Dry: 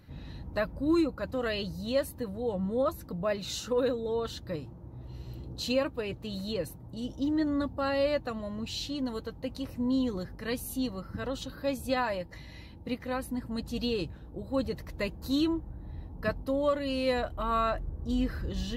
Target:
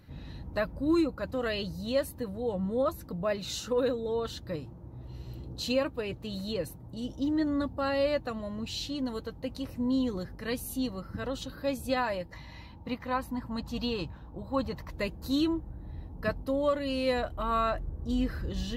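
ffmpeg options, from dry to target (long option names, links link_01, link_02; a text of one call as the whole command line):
ffmpeg -i in.wav -filter_complex "[0:a]asettb=1/sr,asplit=3[link_01][link_02][link_03];[link_01]atrim=end=12.334[link_04];[link_02]atrim=start=12.33:end=14.91,asetpts=PTS-STARTPTS,afade=type=in:duration=0.004:curve=qsin,afade=type=out:start_time=2.576:duration=0.004:curve=qsin,equalizer=frequency=400:width_type=o:width=0.67:gain=-5,equalizer=frequency=1000:width_type=o:width=0.67:gain=9,equalizer=frequency=10000:width_type=o:width=0.67:gain=-8[link_05];[link_03]atrim=start=14.906[link_06];[link_04][link_05]acrossfade=duration=0.004:curve1=hsin:curve2=qsin[link_07];[link_07][link_06]acrossfade=duration=0.004:curve1=qsin:curve2=hsin" out.wav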